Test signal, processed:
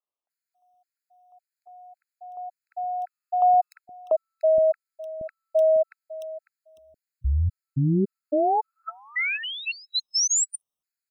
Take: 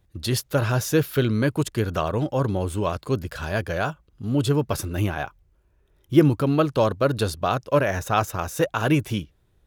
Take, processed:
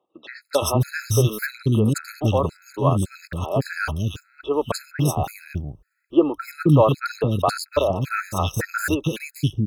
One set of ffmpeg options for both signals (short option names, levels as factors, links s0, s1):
-filter_complex "[0:a]acrossover=split=330|2500[s0][s1][s2];[s2]adelay=300[s3];[s0]adelay=470[s4];[s4][s1][s3]amix=inputs=3:normalize=0,afftfilt=real='re*gt(sin(2*PI*1.8*pts/sr)*(1-2*mod(floor(b*sr/1024/1300),2)),0)':imag='im*gt(sin(2*PI*1.8*pts/sr)*(1-2*mod(floor(b*sr/1024/1300),2)),0)':win_size=1024:overlap=0.75,volume=1.88"